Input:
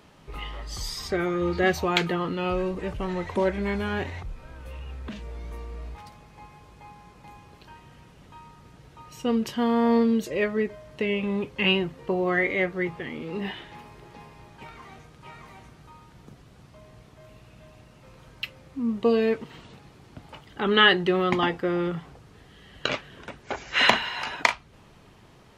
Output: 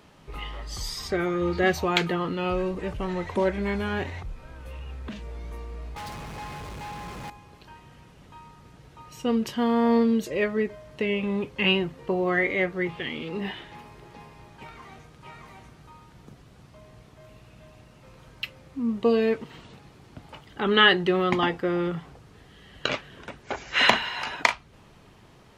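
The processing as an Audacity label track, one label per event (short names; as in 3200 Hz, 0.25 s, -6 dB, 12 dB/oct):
5.960000	7.300000	sample leveller passes 5
12.890000	13.290000	bell 3100 Hz +11.5 dB 0.89 oct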